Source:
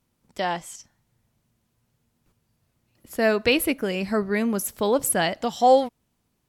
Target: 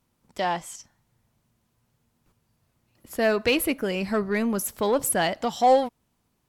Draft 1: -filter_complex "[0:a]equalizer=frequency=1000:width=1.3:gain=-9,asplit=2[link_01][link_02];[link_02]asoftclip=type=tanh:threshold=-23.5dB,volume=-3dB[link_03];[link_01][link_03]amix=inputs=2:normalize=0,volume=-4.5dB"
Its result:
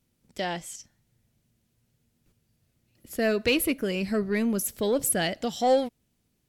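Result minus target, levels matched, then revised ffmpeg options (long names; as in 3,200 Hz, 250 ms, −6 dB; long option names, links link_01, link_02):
1,000 Hz band −5.0 dB
-filter_complex "[0:a]equalizer=frequency=1000:width=1.3:gain=3,asplit=2[link_01][link_02];[link_02]asoftclip=type=tanh:threshold=-23.5dB,volume=-3dB[link_03];[link_01][link_03]amix=inputs=2:normalize=0,volume=-4.5dB"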